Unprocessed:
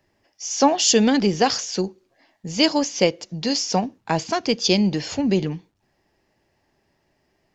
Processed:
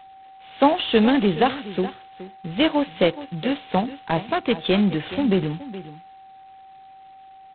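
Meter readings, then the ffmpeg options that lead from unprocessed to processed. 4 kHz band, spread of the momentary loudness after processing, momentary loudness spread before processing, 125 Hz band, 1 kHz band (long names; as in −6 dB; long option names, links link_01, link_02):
−5.0 dB, 16 LU, 13 LU, 0.0 dB, +0.5 dB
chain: -af "aecho=1:1:421:0.178,aeval=exprs='val(0)+0.00708*sin(2*PI*770*n/s)':channel_layout=same" -ar 8000 -c:a adpcm_g726 -b:a 16k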